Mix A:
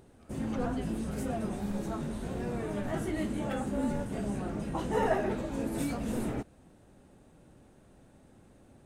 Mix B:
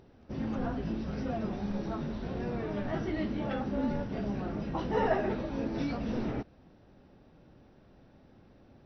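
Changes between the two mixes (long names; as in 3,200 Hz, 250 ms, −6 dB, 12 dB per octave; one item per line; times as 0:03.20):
speech −8.5 dB
background: add linear-phase brick-wall low-pass 6,000 Hz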